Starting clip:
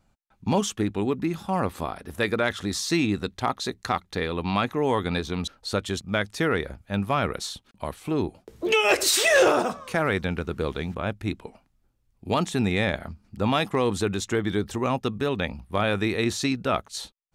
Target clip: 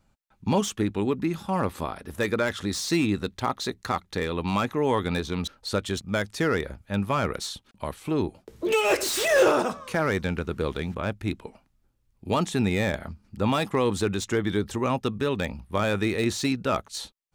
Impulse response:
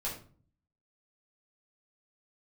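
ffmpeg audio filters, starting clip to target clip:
-filter_complex "[0:a]bandreject=f=720:w=12,acrossover=split=1200[a][b];[b]asoftclip=type=hard:threshold=-26.5dB[c];[a][c]amix=inputs=2:normalize=0"

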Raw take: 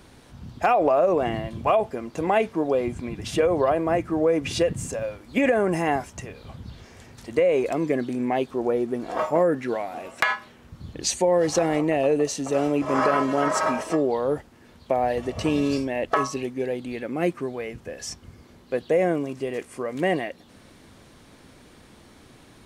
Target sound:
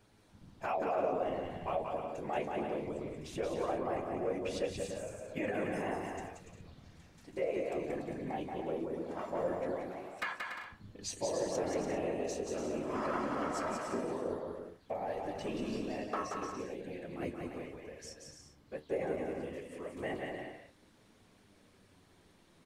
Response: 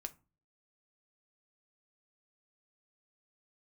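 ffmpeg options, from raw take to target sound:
-af "afftfilt=real='hypot(re,im)*cos(2*PI*random(0))':imag='hypot(re,im)*sin(2*PI*random(1))':win_size=512:overlap=0.75,flanger=delay=9.2:depth=4.8:regen=61:speed=0.19:shape=triangular,aecho=1:1:180|288|352.8|391.7|415:0.631|0.398|0.251|0.158|0.1,volume=-5.5dB"

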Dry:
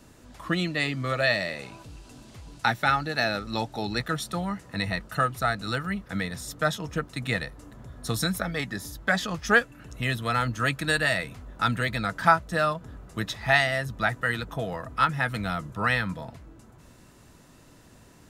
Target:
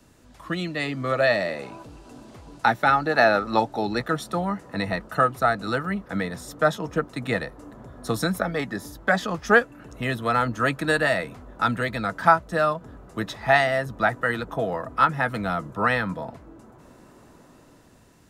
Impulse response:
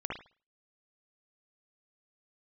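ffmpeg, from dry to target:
-filter_complex "[0:a]asettb=1/sr,asplit=3[a][b][c];[a]atrim=end=3.064[d];[b]atrim=start=3.06:end=3.6,asetpts=PTS-STARTPTS,afade=t=in:d=0.004:c=qsin,afade=t=out:st=0.536:d=0.004:c=qsin,equalizer=f=1.1k:w=0.59:g=7[e];[c]atrim=start=3.596[f];[d][e]acrossfade=d=0.004:c1=hsin:c2=qsin[g];[g][f]acrossfade=d=0.004:c1=qsin:c2=hsin,acrossover=split=210|1400[h][i][j];[i]dynaudnorm=f=200:g=9:m=10.5dB[k];[h][k][j]amix=inputs=3:normalize=0,volume=-3dB"

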